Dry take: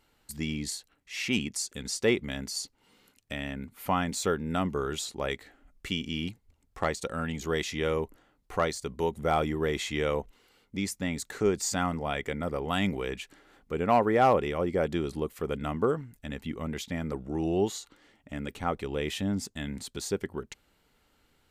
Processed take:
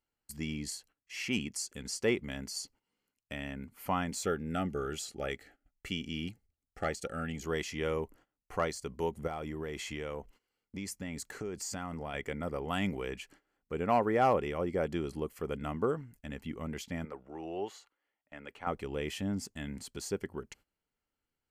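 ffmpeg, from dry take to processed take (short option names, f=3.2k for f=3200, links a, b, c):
-filter_complex "[0:a]asettb=1/sr,asplit=3[a][b][c];[a]atrim=end=4.254[d];[b]atrim=start=4.25:end=7.44,asetpts=PTS-STARTPTS,afade=t=in:d=0.004:c=qsin,afade=t=out:st=3.186:d=0.004:c=qsin,asuperstop=centerf=1000:order=20:qfactor=3.6[e];[c]atrim=start=7.436[f];[d][e]acrossfade=d=0.004:c1=hsin:c2=qsin[g];[g][f]acrossfade=d=0.004:c1=qsin:c2=hsin,asettb=1/sr,asplit=3[h][i][j];[h]atrim=end=9.274[k];[i]atrim=start=9.27:end=12.14,asetpts=PTS-STARTPTS,afade=t=in:d=0.004:c=qsin,afade=t=out:st=2.866:d=0.004:c=qsin,acompressor=threshold=-30dB:ratio=6:attack=3.2:release=140:knee=1:detection=peak[l];[j]atrim=start=12.136[m];[k][l]acrossfade=d=0.004:c1=hsin:c2=qsin[n];[n][m]acrossfade=d=0.004:c1=qsin:c2=hsin,asettb=1/sr,asplit=3[o][p][q];[o]atrim=end=17.054[r];[p]atrim=start=17.05:end=18.67,asetpts=PTS-STARTPTS,afade=t=in:d=0.004:c=qsin,afade=t=out:st=1.616:d=0.004:c=qsin,acrossover=split=440 3600:gain=0.178 1 0.224[s][t][u];[s][t][u]amix=inputs=3:normalize=0[v];[q]atrim=start=18.666[w];[r][v]acrossfade=d=0.004:c1=hsin:c2=qsin[x];[x][w]acrossfade=d=0.004:c1=qsin:c2=hsin,agate=range=-17dB:threshold=-53dB:ratio=16:detection=peak,bandreject=f=3.7k:w=5.9,volume=-4.5dB"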